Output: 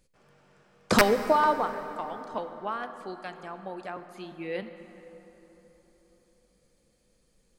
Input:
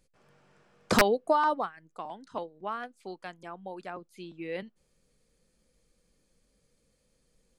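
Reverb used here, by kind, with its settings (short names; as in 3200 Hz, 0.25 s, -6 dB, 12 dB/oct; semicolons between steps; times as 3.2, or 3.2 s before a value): plate-style reverb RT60 4.2 s, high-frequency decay 0.55×, DRR 9 dB; gain +2 dB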